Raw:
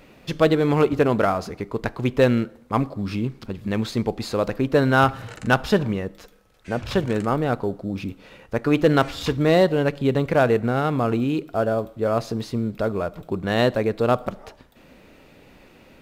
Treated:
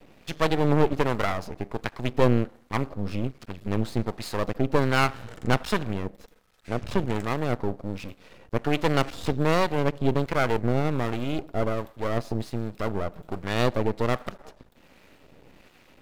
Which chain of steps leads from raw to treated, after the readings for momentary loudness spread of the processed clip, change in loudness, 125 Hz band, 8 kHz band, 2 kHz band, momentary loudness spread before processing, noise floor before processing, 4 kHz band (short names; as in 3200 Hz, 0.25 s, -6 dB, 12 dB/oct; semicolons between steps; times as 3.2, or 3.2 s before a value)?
11 LU, -5.0 dB, -3.0 dB, -1.5 dB, -4.5 dB, 11 LU, -52 dBFS, -3.0 dB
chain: half-wave rectifier; harmonic tremolo 1.3 Hz, depth 50%, crossover 920 Hz; gain +1.5 dB